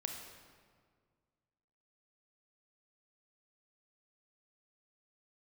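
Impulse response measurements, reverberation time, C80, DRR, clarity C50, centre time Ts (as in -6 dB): 1.8 s, 5.5 dB, 2.5 dB, 4.0 dB, 50 ms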